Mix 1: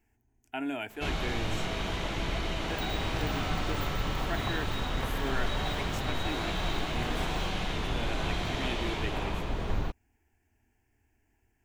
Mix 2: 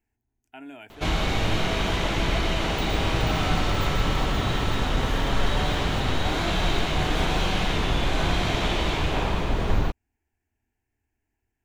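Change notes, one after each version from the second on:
speech -8.0 dB; first sound +8.0 dB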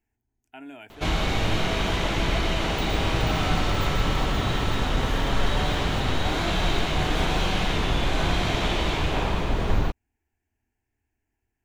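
no change

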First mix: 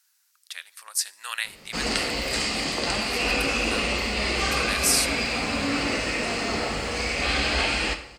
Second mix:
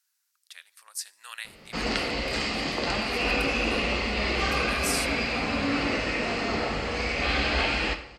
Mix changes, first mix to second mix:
speech -9.0 dB; background: add distance through air 120 m

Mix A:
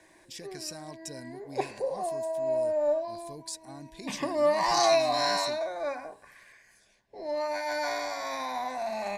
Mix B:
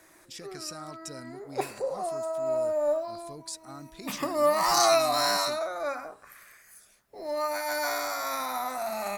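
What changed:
background: remove low-pass 5 kHz 12 dB/octave; master: remove Butterworth band-stop 1.3 kHz, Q 3.7

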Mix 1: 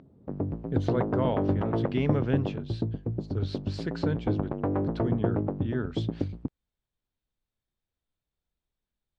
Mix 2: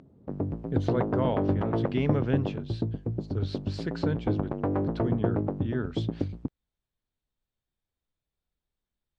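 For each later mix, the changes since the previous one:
background: remove distance through air 110 m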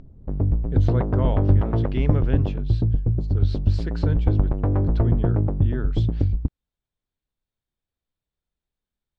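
background: remove high-pass 200 Hz 12 dB/octave

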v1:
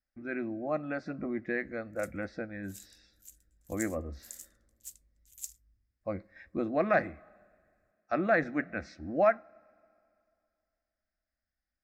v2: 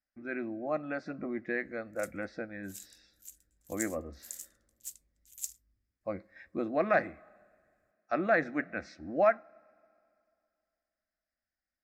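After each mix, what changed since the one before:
background +3.0 dB; master: add bass shelf 120 Hz -11 dB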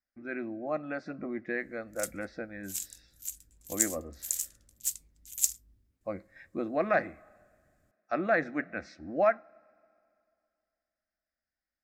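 background +11.5 dB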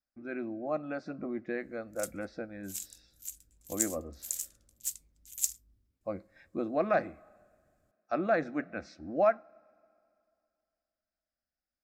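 speech: add peaking EQ 1.9 kHz -9 dB 0.54 oct; background -3.5 dB

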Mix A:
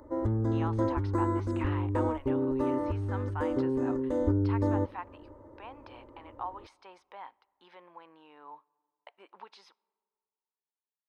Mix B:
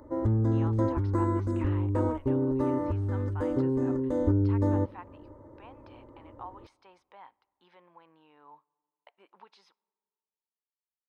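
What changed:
speech -5.5 dB; master: add peaking EQ 150 Hz +8 dB 0.97 oct

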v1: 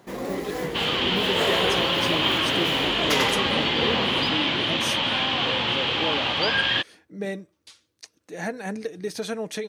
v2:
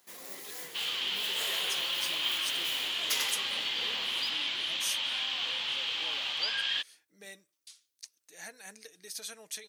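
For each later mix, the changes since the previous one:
master: add pre-emphasis filter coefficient 0.97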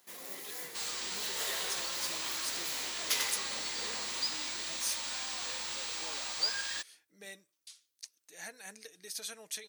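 second sound: remove resonant low-pass 3.1 kHz, resonance Q 7.2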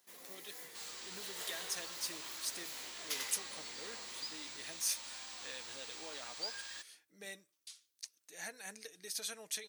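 first sound -8.0 dB; second sound -10.0 dB

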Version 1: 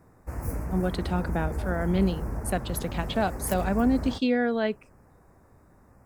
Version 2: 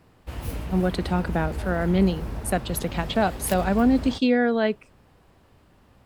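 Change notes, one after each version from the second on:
speech +4.0 dB; background: remove Butterworth band-stop 3.4 kHz, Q 0.8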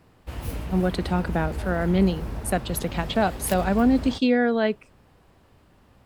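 no change

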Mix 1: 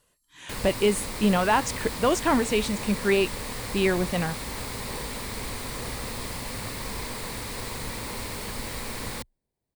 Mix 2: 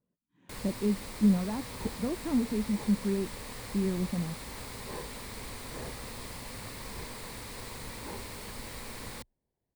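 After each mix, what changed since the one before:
speech: add band-pass filter 210 Hz, Q 2.6; first sound -8.0 dB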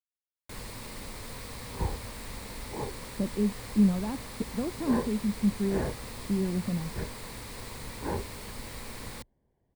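speech: entry +2.55 s; second sound +10.0 dB; master: add bass shelf 170 Hz +3 dB

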